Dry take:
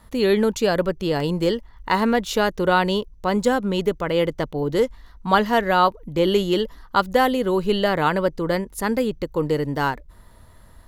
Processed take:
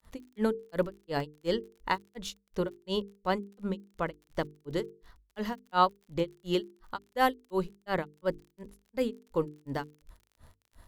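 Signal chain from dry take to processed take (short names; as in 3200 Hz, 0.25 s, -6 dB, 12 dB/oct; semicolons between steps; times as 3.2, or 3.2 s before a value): grains 0.204 s, grains 2.8/s, spray 19 ms, pitch spread up and down by 0 st; crackle 44/s -43 dBFS; notches 50/100/150/200/250/300/350/400/450 Hz; gain -5 dB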